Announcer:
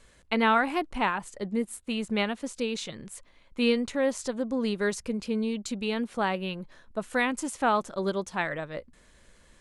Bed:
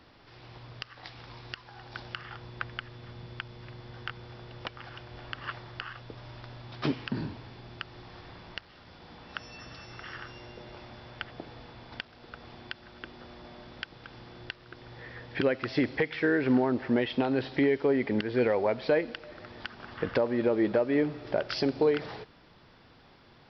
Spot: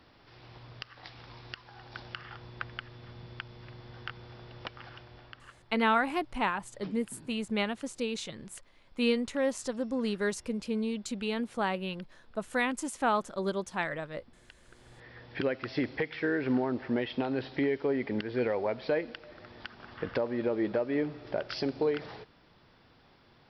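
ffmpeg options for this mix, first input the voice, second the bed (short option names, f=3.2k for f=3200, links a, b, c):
-filter_complex "[0:a]adelay=5400,volume=-3dB[a];[1:a]volume=11dB,afade=t=out:st=4.84:d=0.67:silence=0.177828,afade=t=in:st=14.48:d=0.91:silence=0.211349[b];[a][b]amix=inputs=2:normalize=0"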